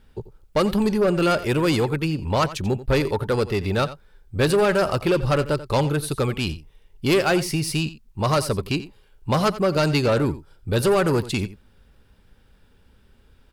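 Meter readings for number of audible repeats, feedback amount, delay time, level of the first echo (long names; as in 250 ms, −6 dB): 1, repeats not evenly spaced, 88 ms, −15.5 dB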